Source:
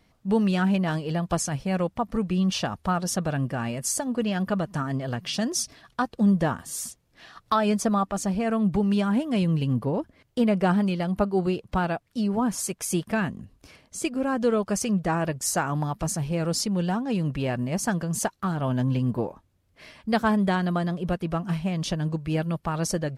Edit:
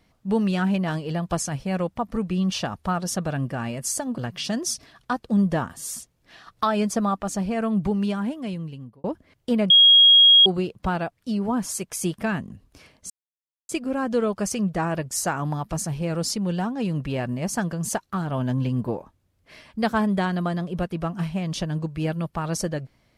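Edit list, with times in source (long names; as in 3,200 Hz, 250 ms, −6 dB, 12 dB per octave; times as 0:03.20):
0:04.18–0:05.07: remove
0:08.75–0:09.93: fade out
0:10.59–0:11.35: beep over 3,280 Hz −9.5 dBFS
0:13.99: splice in silence 0.59 s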